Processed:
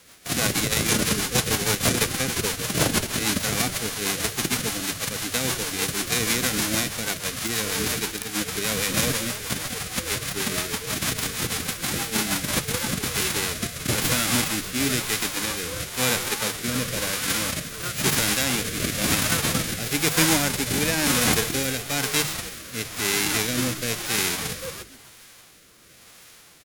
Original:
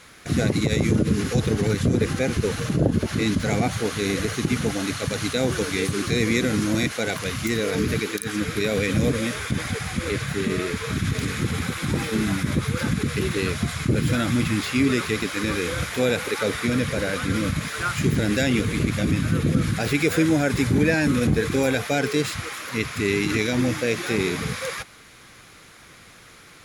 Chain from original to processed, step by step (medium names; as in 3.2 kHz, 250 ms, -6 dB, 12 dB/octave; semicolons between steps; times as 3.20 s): formants flattened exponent 0.3; hum notches 50/100/150 Hz; frequency-shifting echo 137 ms, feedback 52%, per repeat -130 Hz, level -14.5 dB; rotary cabinet horn 6.3 Hz, later 1 Hz, at 12.24 s